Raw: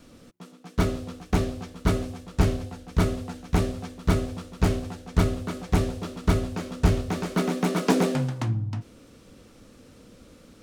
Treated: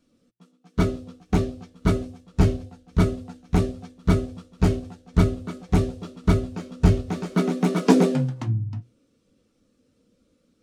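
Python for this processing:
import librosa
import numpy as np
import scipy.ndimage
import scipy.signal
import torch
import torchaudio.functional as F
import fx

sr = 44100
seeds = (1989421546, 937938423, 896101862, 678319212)

p1 = fx.high_shelf(x, sr, hz=2200.0, db=6.5)
p2 = np.sign(p1) * np.maximum(np.abs(p1) - 10.0 ** (-40.5 / 20.0), 0.0)
p3 = p1 + (p2 * 10.0 ** (-11.0 / 20.0))
p4 = fx.low_shelf(p3, sr, hz=110.0, db=-4.5)
p5 = fx.hum_notches(p4, sr, base_hz=60, count=2)
p6 = fx.spectral_expand(p5, sr, expansion=1.5)
y = p6 * 10.0 ** (2.0 / 20.0)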